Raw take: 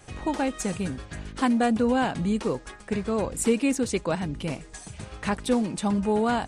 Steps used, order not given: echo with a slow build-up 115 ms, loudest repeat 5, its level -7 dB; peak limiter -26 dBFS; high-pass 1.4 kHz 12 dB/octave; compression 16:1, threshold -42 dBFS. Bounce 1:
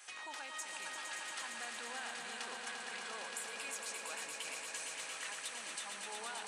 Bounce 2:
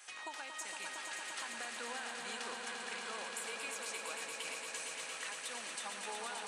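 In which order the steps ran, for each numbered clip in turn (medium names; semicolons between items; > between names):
peak limiter > high-pass > compression > echo with a slow build-up; high-pass > peak limiter > compression > echo with a slow build-up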